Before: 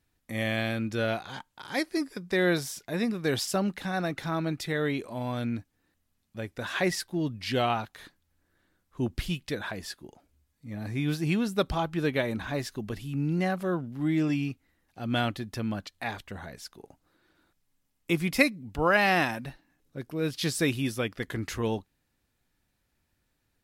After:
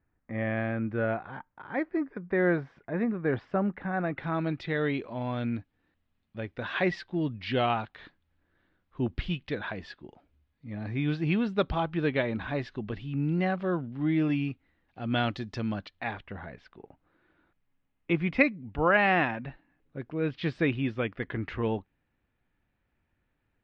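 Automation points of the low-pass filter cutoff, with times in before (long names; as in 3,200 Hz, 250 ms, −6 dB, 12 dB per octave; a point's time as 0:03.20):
low-pass filter 24 dB per octave
0:03.89 1,900 Hz
0:04.51 3,500 Hz
0:15.14 3,500 Hz
0:15.42 5,900 Hz
0:16.21 2,800 Hz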